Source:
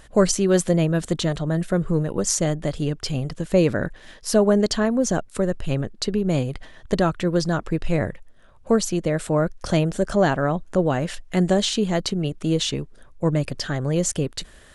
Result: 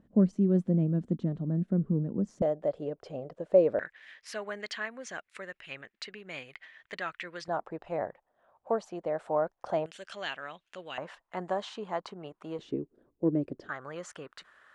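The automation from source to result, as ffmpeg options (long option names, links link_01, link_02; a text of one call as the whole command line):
ffmpeg -i in.wav -af "asetnsamples=nb_out_samples=441:pad=0,asendcmd='2.42 bandpass f 580;3.79 bandpass f 2100;7.48 bandpass f 790;9.86 bandpass f 2800;10.98 bandpass f 980;12.59 bandpass f 330;13.69 bandpass f 1300',bandpass=frequency=220:width_type=q:width=2.8:csg=0" out.wav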